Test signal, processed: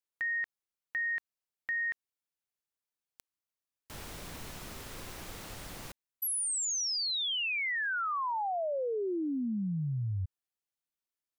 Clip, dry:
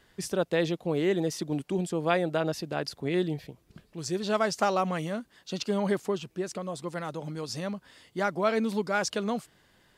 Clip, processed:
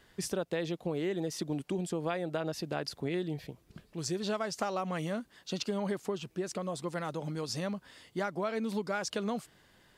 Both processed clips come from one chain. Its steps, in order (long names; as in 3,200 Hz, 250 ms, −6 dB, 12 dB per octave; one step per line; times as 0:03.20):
downward compressor 6 to 1, threshold −30 dBFS